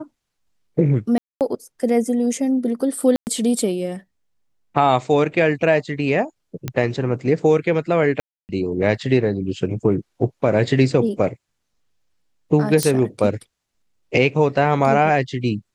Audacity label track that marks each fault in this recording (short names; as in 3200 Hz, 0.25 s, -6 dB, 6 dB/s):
1.180000	1.410000	gap 0.228 s
3.160000	3.270000	gap 0.109 s
6.680000	6.680000	pop -11 dBFS
8.200000	8.490000	gap 0.289 s
12.830000	12.830000	pop -4 dBFS